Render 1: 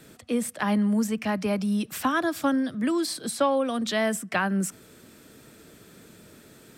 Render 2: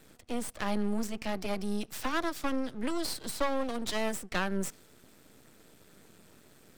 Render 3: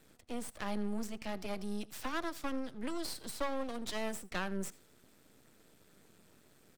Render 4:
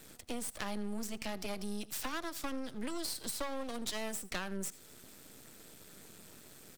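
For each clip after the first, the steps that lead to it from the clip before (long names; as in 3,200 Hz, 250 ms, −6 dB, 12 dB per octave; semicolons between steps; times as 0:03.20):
dynamic equaliser 4,900 Hz, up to +5 dB, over −48 dBFS, Q 0.97; half-wave rectification; level −3.5 dB
single-tap delay 82 ms −21.5 dB; level −6 dB
high-shelf EQ 3,600 Hz +8 dB; downward compressor 3 to 1, threshold −43 dBFS, peak gain reduction 11 dB; level +6.5 dB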